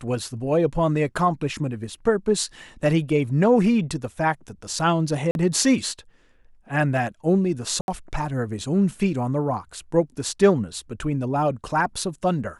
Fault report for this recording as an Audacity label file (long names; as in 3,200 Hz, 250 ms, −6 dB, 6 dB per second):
5.310000	5.350000	drop-out 41 ms
7.810000	7.880000	drop-out 71 ms